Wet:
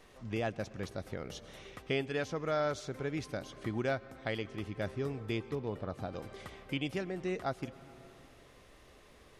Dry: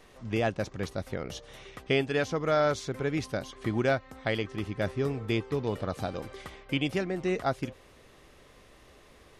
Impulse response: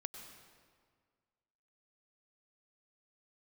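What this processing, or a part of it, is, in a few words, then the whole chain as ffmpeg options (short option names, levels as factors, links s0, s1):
compressed reverb return: -filter_complex "[0:a]asettb=1/sr,asplit=3[s0][s1][s2];[s0]atrim=end=5.554[s3];[s1]atrim=start=5.55:end=6.13,asetpts=PTS-STARTPTS,afade=t=in:d=0.004:c=qsin,afade=t=out:st=0.576:d=0.004:c=qsin,highshelf=f=2800:g=-10[s4];[s2]atrim=start=6.126[s5];[s3][s4]acrossfade=d=0.004:c1=hsin:c2=qsin[s6];[s6][s5]acrossfade=d=0.004:c1=qsin:c2=hsin,asplit=2[s7][s8];[1:a]atrim=start_sample=2205[s9];[s8][s9]afir=irnorm=-1:irlink=0,acompressor=threshold=0.00794:ratio=6,volume=1.12[s10];[s7][s10]amix=inputs=2:normalize=0,volume=0.398"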